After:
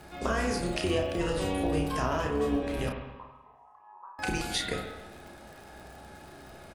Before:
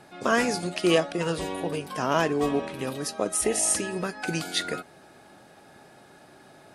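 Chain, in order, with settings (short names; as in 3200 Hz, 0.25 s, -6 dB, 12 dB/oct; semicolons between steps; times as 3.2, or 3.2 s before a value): octaver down 2 oct, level 0 dB; compressor 6:1, threshold -28 dBFS, peak gain reduction 12 dB; crackle 66/s -42 dBFS; 2.89–4.19 Butterworth band-pass 1000 Hz, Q 5; doubler 32 ms -5 dB; spring tank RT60 1.1 s, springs 46/52 ms, chirp 60 ms, DRR 4 dB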